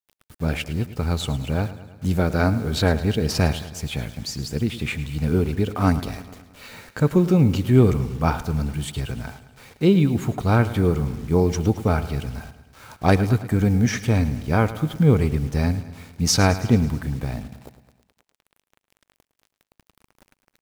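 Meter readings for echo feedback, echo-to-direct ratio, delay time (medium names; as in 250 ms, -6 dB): 60%, -13.0 dB, 108 ms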